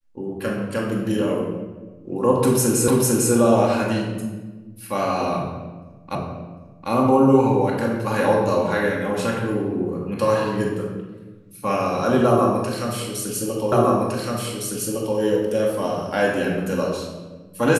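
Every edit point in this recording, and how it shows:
0:02.88: the same again, the last 0.45 s
0:06.15: the same again, the last 0.75 s
0:13.72: the same again, the last 1.46 s

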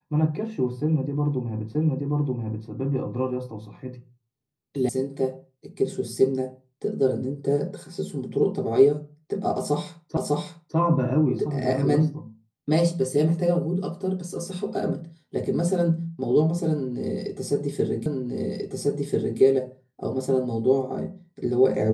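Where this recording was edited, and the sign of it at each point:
0:01.75: the same again, the last 0.93 s
0:04.89: cut off before it has died away
0:10.17: the same again, the last 0.6 s
0:18.06: the same again, the last 1.34 s

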